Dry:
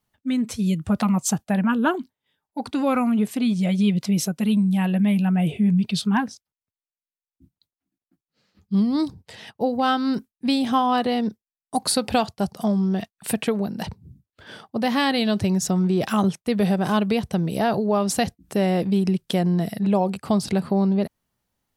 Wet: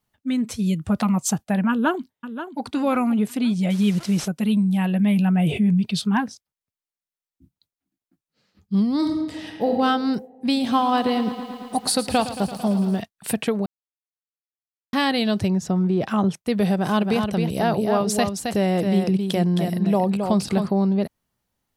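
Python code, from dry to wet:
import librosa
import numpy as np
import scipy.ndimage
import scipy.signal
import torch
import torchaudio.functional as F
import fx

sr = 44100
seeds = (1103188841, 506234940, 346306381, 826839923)

y = fx.echo_throw(x, sr, start_s=1.7, length_s=0.9, ms=530, feedback_pct=40, wet_db=-11.0)
y = fx.delta_mod(y, sr, bps=64000, step_db=-33.5, at=(3.7, 4.28))
y = fx.env_flatten(y, sr, amount_pct=50, at=(5.02, 5.74))
y = fx.reverb_throw(y, sr, start_s=8.96, length_s=0.76, rt60_s=1.5, drr_db=0.5)
y = fx.echo_crushed(y, sr, ms=112, feedback_pct=80, bits=8, wet_db=-13, at=(10.32, 13.0))
y = fx.lowpass(y, sr, hz=2000.0, slope=6, at=(15.48, 16.31))
y = fx.echo_single(y, sr, ms=268, db=-5.5, at=(17.0, 20.66), fade=0.02)
y = fx.edit(y, sr, fx.silence(start_s=13.66, length_s=1.27), tone=tone)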